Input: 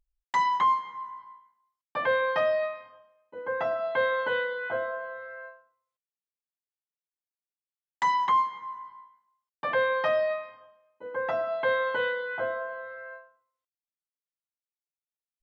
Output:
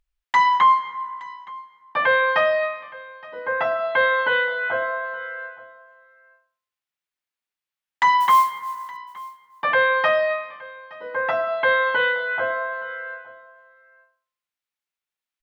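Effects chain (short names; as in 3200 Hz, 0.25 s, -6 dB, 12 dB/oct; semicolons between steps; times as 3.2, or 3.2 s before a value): tone controls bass +2 dB, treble -12 dB; 8.2–8.97 modulation noise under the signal 28 dB; tilt shelf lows -7 dB, about 890 Hz; on a send: echo 0.869 s -21.5 dB; on the sum: gain +7 dB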